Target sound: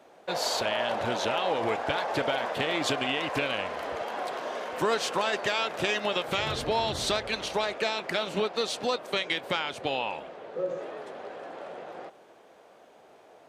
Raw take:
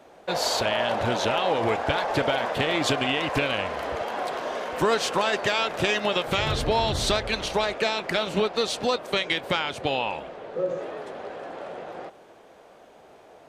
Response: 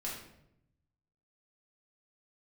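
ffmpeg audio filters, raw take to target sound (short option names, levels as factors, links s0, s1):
-af "highpass=f=170:p=1,volume=0.668"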